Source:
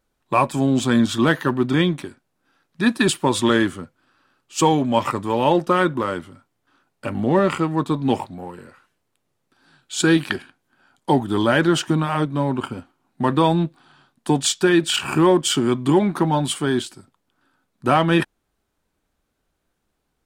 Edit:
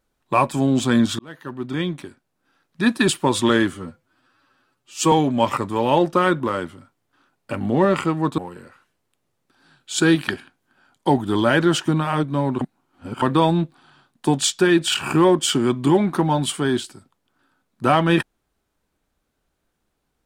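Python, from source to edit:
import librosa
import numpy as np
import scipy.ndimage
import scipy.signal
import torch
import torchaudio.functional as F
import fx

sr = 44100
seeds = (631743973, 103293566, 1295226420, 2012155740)

y = fx.edit(x, sr, fx.fade_in_span(start_s=1.19, length_s=1.87, curve='qsin'),
    fx.stretch_span(start_s=3.74, length_s=0.92, factor=1.5),
    fx.cut(start_s=7.92, length_s=0.48),
    fx.reverse_span(start_s=12.63, length_s=0.61), tone=tone)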